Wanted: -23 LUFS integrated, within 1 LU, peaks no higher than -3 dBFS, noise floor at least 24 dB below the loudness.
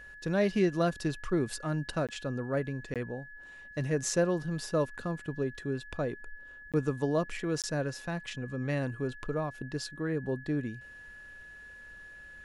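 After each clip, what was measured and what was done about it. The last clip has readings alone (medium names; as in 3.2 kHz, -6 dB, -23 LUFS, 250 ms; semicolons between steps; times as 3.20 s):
dropouts 4; longest dropout 17 ms; steady tone 1.7 kHz; tone level -47 dBFS; loudness -33.0 LUFS; peak level -15.5 dBFS; loudness target -23.0 LUFS
-> interpolate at 2.07/2.94/6.72/7.62 s, 17 ms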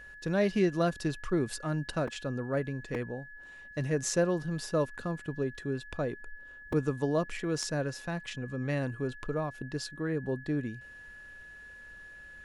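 dropouts 0; steady tone 1.7 kHz; tone level -47 dBFS
-> band-stop 1.7 kHz, Q 30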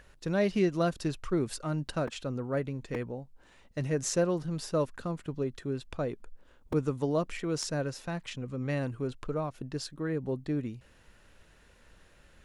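steady tone not found; loudness -33.0 LUFS; peak level -16.0 dBFS; loudness target -23.0 LUFS
-> trim +10 dB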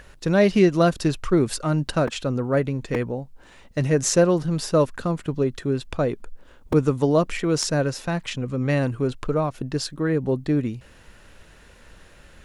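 loudness -23.0 LUFS; peak level -6.0 dBFS; noise floor -50 dBFS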